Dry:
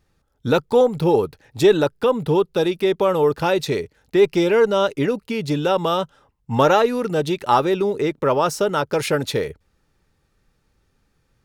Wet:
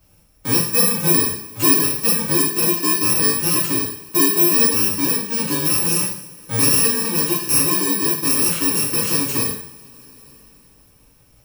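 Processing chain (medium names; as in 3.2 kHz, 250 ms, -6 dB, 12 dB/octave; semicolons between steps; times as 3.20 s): bit-reversed sample order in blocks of 64 samples; two-slope reverb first 0.56 s, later 3.1 s, from -28 dB, DRR -8.5 dB; three bands compressed up and down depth 40%; trim -8 dB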